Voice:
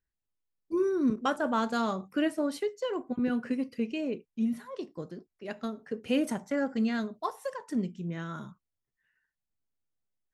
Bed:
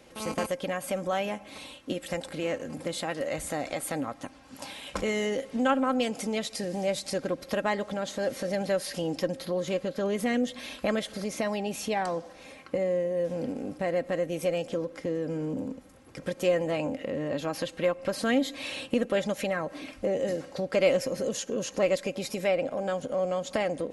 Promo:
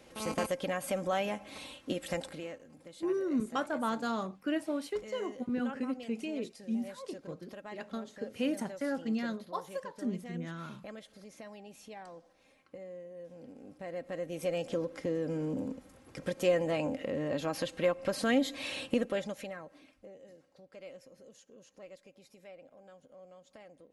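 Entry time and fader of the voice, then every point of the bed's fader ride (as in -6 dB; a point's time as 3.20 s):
2.30 s, -4.5 dB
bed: 2.22 s -2.5 dB
2.64 s -18.5 dB
13.41 s -18.5 dB
14.71 s -2.5 dB
18.92 s -2.5 dB
20.21 s -25.5 dB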